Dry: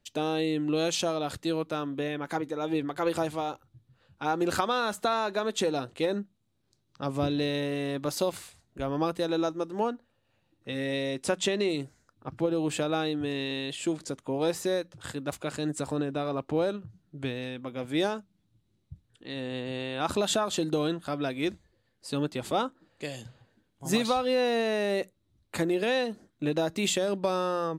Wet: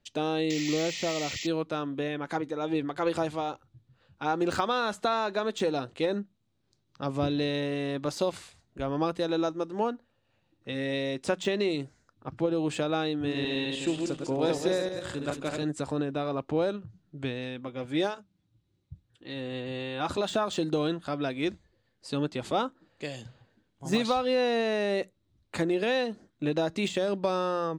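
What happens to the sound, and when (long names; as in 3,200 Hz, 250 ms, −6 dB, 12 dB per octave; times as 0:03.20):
0:00.50–0:01.47: sound drawn into the spectrogram noise 1,800–7,700 Hz −27 dBFS
0:13.14–0:15.63: feedback delay that plays each chunk backwards 103 ms, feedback 52%, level −3.5 dB
0:17.67–0:20.33: notch comb filter 220 Hz
whole clip: low-pass filter 7,200 Hz 12 dB per octave; de-essing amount 80%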